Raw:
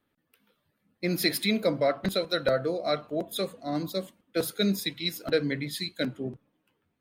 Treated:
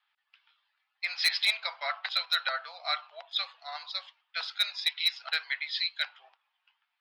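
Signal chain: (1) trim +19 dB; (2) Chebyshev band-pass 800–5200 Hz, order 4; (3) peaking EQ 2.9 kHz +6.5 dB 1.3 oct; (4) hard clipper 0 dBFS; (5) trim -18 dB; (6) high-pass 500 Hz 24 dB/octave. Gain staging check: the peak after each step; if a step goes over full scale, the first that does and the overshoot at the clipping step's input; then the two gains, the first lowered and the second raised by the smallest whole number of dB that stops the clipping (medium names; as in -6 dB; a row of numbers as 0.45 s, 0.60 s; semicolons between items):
+7.0 dBFS, +4.5 dBFS, +9.0 dBFS, 0.0 dBFS, -18.0 dBFS, -14.0 dBFS; step 1, 9.0 dB; step 1 +10 dB, step 5 -9 dB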